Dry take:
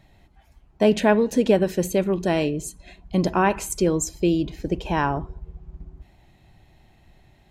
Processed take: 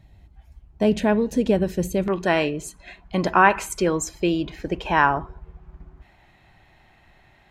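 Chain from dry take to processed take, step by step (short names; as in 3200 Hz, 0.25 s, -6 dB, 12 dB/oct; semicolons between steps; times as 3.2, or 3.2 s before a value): bell 65 Hz +13 dB 2.4 oct, from 2.08 s 1500 Hz; gain -4 dB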